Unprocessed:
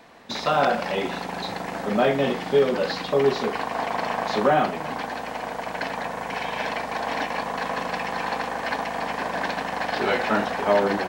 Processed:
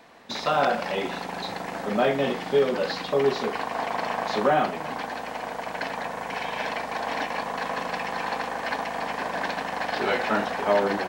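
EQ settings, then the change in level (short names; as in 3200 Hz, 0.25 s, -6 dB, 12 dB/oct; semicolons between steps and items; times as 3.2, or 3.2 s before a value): low shelf 200 Hz -3.5 dB; -1.5 dB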